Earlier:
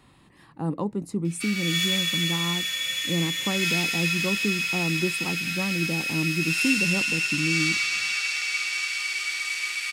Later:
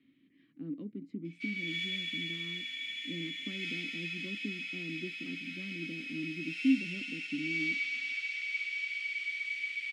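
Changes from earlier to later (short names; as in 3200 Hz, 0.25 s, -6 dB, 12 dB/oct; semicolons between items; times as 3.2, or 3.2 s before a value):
speech: add air absorption 140 m; master: add vowel filter i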